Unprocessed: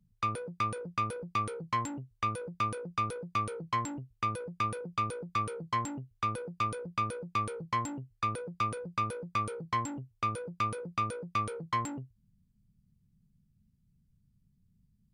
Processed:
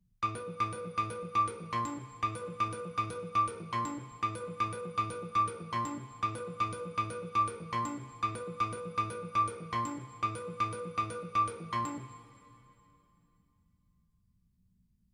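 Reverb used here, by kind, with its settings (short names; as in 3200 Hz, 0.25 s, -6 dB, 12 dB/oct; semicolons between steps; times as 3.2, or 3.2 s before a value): two-slope reverb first 0.29 s, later 2.9 s, from -17 dB, DRR 2 dB; gain -3.5 dB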